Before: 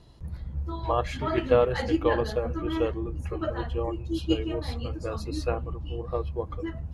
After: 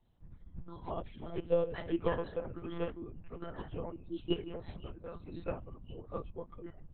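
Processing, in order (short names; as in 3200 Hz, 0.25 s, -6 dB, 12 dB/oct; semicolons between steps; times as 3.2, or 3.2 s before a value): 0.9–1.74 bell 1600 Hz -13 dB 1.3 oct; monotone LPC vocoder at 8 kHz 170 Hz; upward expander 1.5:1, over -40 dBFS; gain -6.5 dB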